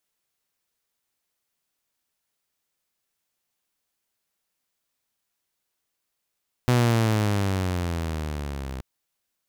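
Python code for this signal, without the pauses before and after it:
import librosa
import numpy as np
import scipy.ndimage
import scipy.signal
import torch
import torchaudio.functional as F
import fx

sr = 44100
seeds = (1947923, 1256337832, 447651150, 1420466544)

y = fx.riser_tone(sr, length_s=2.13, level_db=-14, wave='saw', hz=125.0, rise_st=-11.5, swell_db=-15.0)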